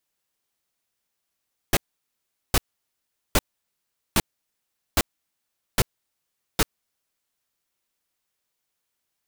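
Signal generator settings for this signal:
noise bursts pink, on 0.04 s, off 0.77 s, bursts 7, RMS −18 dBFS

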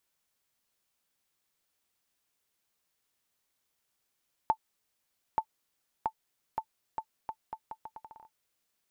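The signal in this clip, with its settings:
bouncing ball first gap 0.88 s, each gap 0.77, 882 Hz, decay 72 ms −14.5 dBFS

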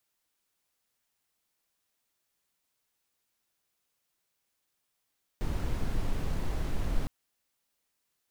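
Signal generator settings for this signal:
noise brown, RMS −28.5 dBFS 1.66 s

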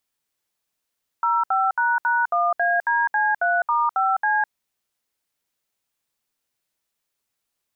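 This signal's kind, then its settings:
touch tones "05##1ADC3*5C", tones 206 ms, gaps 67 ms, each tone −20 dBFS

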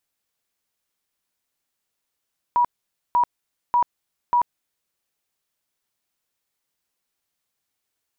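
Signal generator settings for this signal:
tone bursts 967 Hz, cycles 84, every 0.59 s, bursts 4, −14.5 dBFS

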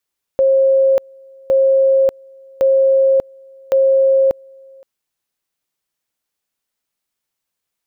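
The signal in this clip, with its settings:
tone at two levels in turn 537 Hz −9 dBFS, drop 29.5 dB, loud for 0.59 s, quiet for 0.52 s, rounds 4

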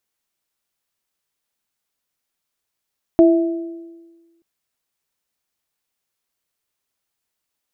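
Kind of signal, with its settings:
inharmonic partials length 1.23 s, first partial 335 Hz, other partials 655 Hz, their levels −5.5 dB, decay 1.38 s, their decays 0.95 s, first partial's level −6.5 dB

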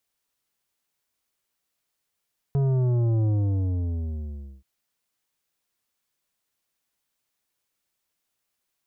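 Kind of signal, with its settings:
bass drop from 140 Hz, over 2.08 s, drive 10 dB, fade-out 1.37 s, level −20.5 dB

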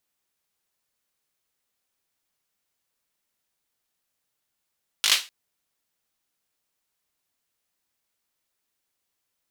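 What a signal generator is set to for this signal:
synth clap length 0.25 s, bursts 5, apart 19 ms, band 3,300 Hz, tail 0.28 s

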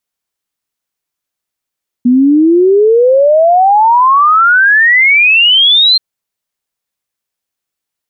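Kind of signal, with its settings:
exponential sine sweep 240 Hz → 4,200 Hz 3.93 s −4 dBFS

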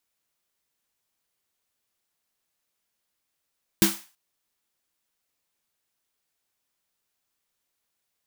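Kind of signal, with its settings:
synth snare length 0.33 s, tones 200 Hz, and 330 Hz, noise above 730 Hz, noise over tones −1.5 dB, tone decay 0.22 s, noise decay 0.37 s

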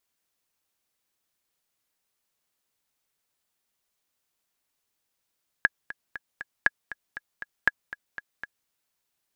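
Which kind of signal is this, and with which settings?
click track 237 BPM, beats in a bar 4, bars 3, 1,670 Hz, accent 16.5 dB −5.5 dBFS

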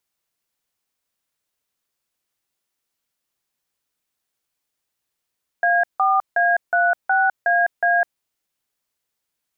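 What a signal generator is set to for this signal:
touch tones "A4A36AA", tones 205 ms, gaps 161 ms, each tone −17 dBFS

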